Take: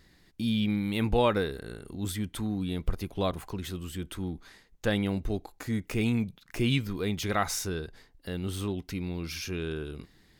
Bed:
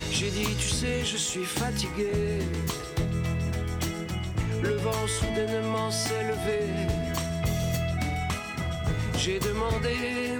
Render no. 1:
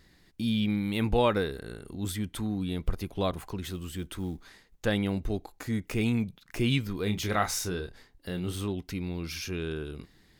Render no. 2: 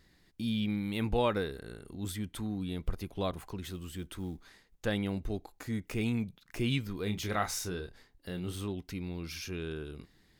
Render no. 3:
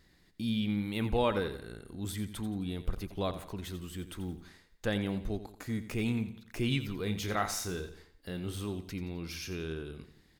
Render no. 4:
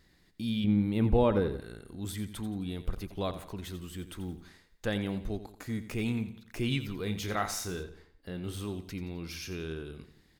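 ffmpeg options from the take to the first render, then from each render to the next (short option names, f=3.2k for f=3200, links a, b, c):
-filter_complex "[0:a]asettb=1/sr,asplit=3[a][b][c];[a]atrim=end=3.624[d];[b]atrim=start=3.62:end=4.85,asetpts=PTS-STARTPTS,afade=t=in:d=0.004:c=qsin,afade=t=out:st=1.226:d=0.004:c=qsin,acrusher=bits=8:mode=log:mix=0:aa=0.000001[e];[c]atrim=start=4.846[f];[d][e]acrossfade=d=0.004:c1=hsin:c2=qsin[g];[g][f]acrossfade=d=0.004:c1=qsin:c2=hsin,asettb=1/sr,asplit=3[h][i][j];[h]atrim=end=7.034[k];[i]atrim=start=7.03:end=8.55,asetpts=PTS-STARTPTS,afade=t=in:d=0.004:c=qsin,afade=t=out:st=1.516:d=0.004:c=qsin,asplit=2[l][m];[m]adelay=28,volume=-7.5dB[n];[l][n]amix=inputs=2:normalize=0,atrim=end_sample=67032[o];[j]atrim=start=8.546[p];[k][o]acrossfade=d=0.004:c1=hsin:c2=qsin[q];[q][p]acrossfade=d=0.004:c1=qsin:c2=hsin"
-af "volume=-4.5dB"
-af "aecho=1:1:87|174|261|348:0.237|0.0972|0.0399|0.0163"
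-filter_complex "[0:a]asettb=1/sr,asplit=3[a][b][c];[a]atrim=end=0.644[d];[b]atrim=start=0.64:end=1.6,asetpts=PTS-STARTPTS,afade=t=in:d=0.004:c=qsin,afade=t=out:st=0.956:d=0.004:c=qsin,tiltshelf=f=970:g=7[e];[c]atrim=start=1.596[f];[d][e]acrossfade=d=0.004:c1=hsin:c2=qsin[g];[g][f]acrossfade=d=0.004:c1=qsin:c2=hsin,asettb=1/sr,asplit=3[h][i][j];[h]atrim=end=7.834[k];[i]atrim=start=7.83:end=8.44,asetpts=PTS-STARTPTS,afade=t=in:d=0.004:c=qsin,afade=t=out:st=0.606:d=0.004:c=qsin,highshelf=f=3.5k:g=-8.5[l];[j]atrim=start=8.436[m];[k][l]acrossfade=d=0.004:c1=hsin:c2=qsin[n];[n][m]acrossfade=d=0.004:c1=qsin:c2=hsin"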